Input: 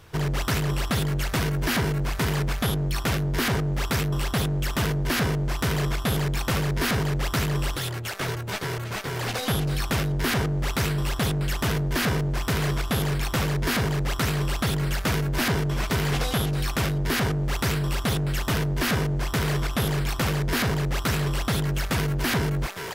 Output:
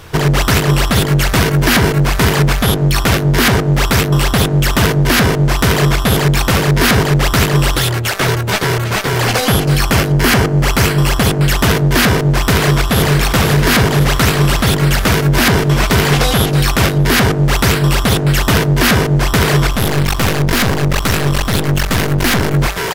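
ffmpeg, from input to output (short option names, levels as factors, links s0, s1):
-filter_complex "[0:a]asettb=1/sr,asplit=3[s0][s1][s2];[s0]atrim=end=9.254[s3];[s1]atrim=start=9.25:end=11.42,asetpts=PTS-STARTPTS,afade=t=in:d=0.004:c=qsin,afade=t=out:st=2.166:d=0.004:c=qsin,bandreject=f=3700:w=12[s4];[s2]atrim=start=11.416[s5];[s3][s4]acrossfade=d=0.004:c1=hsin:c2=qsin[s6];[s6][s5]acrossfade=d=0.004:c1=qsin:c2=hsin,asplit=2[s7][s8];[s8]afade=t=in:st=12.38:d=0.01,afade=t=out:st=13.13:d=0.01,aecho=0:1:510|1020|1530|2040|2550|3060|3570|4080|4590|5100:0.334965|0.234476|0.164133|0.114893|0.0804252|0.0562976|0.0394083|0.0275858|0.0193101|0.0135171[s9];[s7][s9]amix=inputs=2:normalize=0,asettb=1/sr,asplit=3[s10][s11][s12];[s10]atrim=end=19.714[s13];[s11]atrim=start=19.71:end=22.54,asetpts=PTS-STARTPTS,afade=t=in:d=0.004:c=qsin,afade=t=out:st=2.826:d=0.004:c=qsin,aeval=exprs='clip(val(0),-1,0.0266)':c=same[s14];[s12]atrim=start=22.536[s15];[s13][s14]acrossfade=d=0.004:c1=hsin:c2=qsin[s16];[s16][s15]acrossfade=d=0.004:c1=qsin:c2=hsin,bandreject=f=50:t=h:w=6,bandreject=f=100:t=h:w=6,bandreject=f=150:t=h:w=6,alimiter=level_in=6.31:limit=0.891:release=50:level=0:latency=1,volume=0.891"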